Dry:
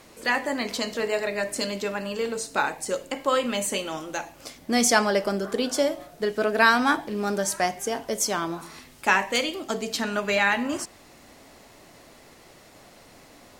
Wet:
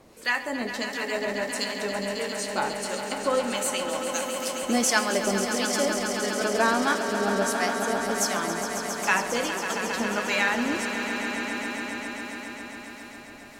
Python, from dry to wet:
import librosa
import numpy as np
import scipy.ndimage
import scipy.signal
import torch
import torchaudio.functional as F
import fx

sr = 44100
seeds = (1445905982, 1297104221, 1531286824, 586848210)

y = fx.harmonic_tremolo(x, sr, hz=1.5, depth_pct=70, crossover_hz=1000.0)
y = fx.bass_treble(y, sr, bass_db=-15, treble_db=12, at=(3.89, 4.63))
y = fx.echo_swell(y, sr, ms=136, loudest=5, wet_db=-10.0)